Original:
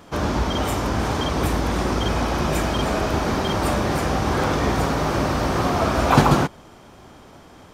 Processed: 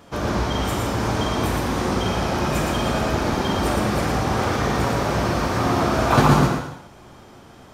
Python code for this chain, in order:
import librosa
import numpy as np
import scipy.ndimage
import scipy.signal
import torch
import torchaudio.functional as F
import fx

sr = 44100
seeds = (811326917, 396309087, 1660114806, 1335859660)

y = x + 10.0 ** (-4.5 / 20.0) * np.pad(x, (int(116 * sr / 1000.0), 0))[:len(x)]
y = fx.rev_gated(y, sr, seeds[0], gate_ms=330, shape='falling', drr_db=4.0)
y = y * 10.0 ** (-2.5 / 20.0)